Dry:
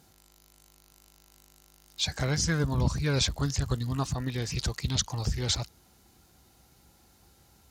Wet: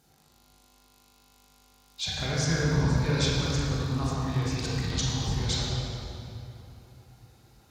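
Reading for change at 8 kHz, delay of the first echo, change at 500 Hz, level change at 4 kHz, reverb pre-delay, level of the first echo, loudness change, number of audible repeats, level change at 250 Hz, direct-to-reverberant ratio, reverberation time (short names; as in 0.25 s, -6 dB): -2.0 dB, none, +2.5 dB, +0.5 dB, 18 ms, none, +1.0 dB, none, +2.5 dB, -6.0 dB, 3.0 s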